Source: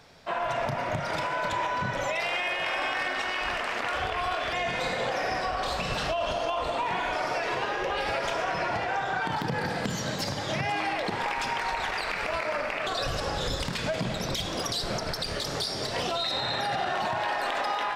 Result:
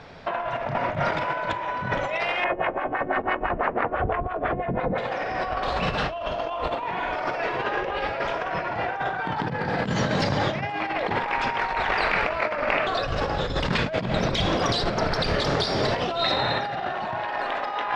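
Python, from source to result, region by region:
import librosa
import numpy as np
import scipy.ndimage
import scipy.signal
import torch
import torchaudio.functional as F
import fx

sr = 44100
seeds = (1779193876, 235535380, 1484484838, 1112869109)

y = fx.chain(x, sr, fx.filter_lfo_lowpass(shape='sine', hz=6.0, low_hz=240.0, high_hz=1900.0, q=1.1),
    fx.lowpass(hz=7600.0, slope=12), at=(2.44, 4.98))
y = scipy.signal.sosfilt(scipy.signal.bessel(2, 2500.0, 'lowpass', norm='mag', fs=sr, output='sos'), y)
y = fx.over_compress(y, sr, threshold_db=-33.0, ratio=-0.5)
y = y * librosa.db_to_amplitude(8.0)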